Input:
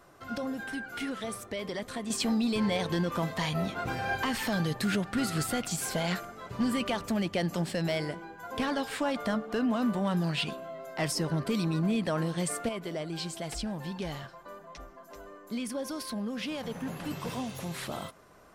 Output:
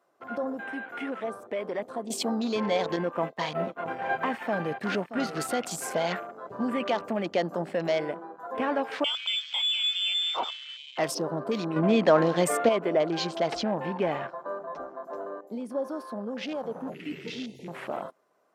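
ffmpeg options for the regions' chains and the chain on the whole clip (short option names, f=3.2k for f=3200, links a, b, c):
-filter_complex "[0:a]asettb=1/sr,asplit=3[a][b][c];[a]atrim=end=2.964[d];[b]atrim=start=2.96:end=5.37,asetpts=PTS-STARTPTS,afade=t=in:d=0.004:c=qsin,afade=t=out:st=2.406:d=0.004:c=qsin,agate=range=-33dB:threshold=-30dB:ratio=3:release=100:detection=peak,aecho=1:1:628:0.266,atrim=end_sample=106281[e];[c]atrim=start=5.366[f];[d][e]acrossfade=d=0.004:c1=hsin:c2=qsin[g];[g][f]acrossfade=d=0.004:c1=qsin:c2=hsin,asettb=1/sr,asplit=3[h][i][j];[h]atrim=end=9.044[k];[i]atrim=start=9.04:end=10.98,asetpts=PTS-STARTPTS,afade=t=in:d=0.004:c=qsin,afade=t=out:st=1.936:d=0.004:c=qsin,asuperstop=centerf=1900:order=8:qfactor=3.7,lowpass=f=3.1k:t=q:w=0.5098,lowpass=f=3.1k:t=q:w=0.6013,lowpass=f=3.1k:t=q:w=0.9,lowpass=f=3.1k:t=q:w=2.563,afreqshift=-3700[l];[j]atrim=start=10.976[m];[k][l]acrossfade=d=0.004:c1=hsin:c2=qsin[n];[n][m]acrossfade=d=0.004:c1=qsin:c2=hsin,asettb=1/sr,asplit=3[o][p][q];[o]atrim=end=11.764[r];[p]atrim=start=11.76:end=15.41,asetpts=PTS-STARTPTS,afade=t=in:d=0.004:c=qsin,afade=t=out:st=3.646:d=0.004:c=qsin,acontrast=81,highshelf=f=10k:g=-11[s];[q]atrim=start=15.406[t];[r][s]acrossfade=d=0.004:c1=hsin:c2=qsin[u];[u][t]acrossfade=d=0.004:c1=qsin:c2=hsin,asettb=1/sr,asplit=3[v][w][x];[v]atrim=end=16.944[y];[w]atrim=start=16.94:end=17.68,asetpts=PTS-STARTPTS,afade=t=in:d=0.004:c=qsin,afade=t=out:st=0.736:d=0.004:c=qsin,acrossover=split=6700[z][aa];[aa]acompressor=threshold=-56dB:ratio=4:attack=1:release=60[ab];[z][ab]amix=inputs=2:normalize=0,asuperstop=centerf=930:order=20:qfactor=0.65,equalizer=f=3.4k:t=o:w=2.6:g=7.5[ac];[x]atrim=start=17.676[ad];[y][ac]acrossfade=d=0.004:c1=hsin:c2=qsin[ae];[ae][ad]acrossfade=d=0.004:c1=qsin:c2=hsin,afwtdn=0.00891,highpass=240,equalizer=f=620:t=o:w=1.8:g=6.5"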